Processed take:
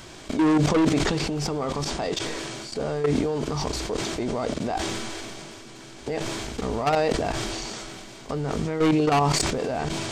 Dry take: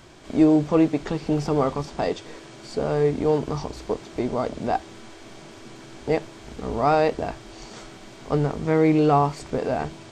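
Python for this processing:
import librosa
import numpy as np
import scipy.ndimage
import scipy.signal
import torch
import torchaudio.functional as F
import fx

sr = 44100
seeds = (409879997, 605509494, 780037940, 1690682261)

y = fx.high_shelf(x, sr, hz=2500.0, db=6.5)
y = fx.level_steps(y, sr, step_db=17)
y = 10.0 ** (-24.5 / 20.0) * np.tanh(y / 10.0 ** (-24.5 / 20.0))
y = fx.sustainer(y, sr, db_per_s=20.0)
y = F.gain(torch.from_numpy(y), 7.5).numpy()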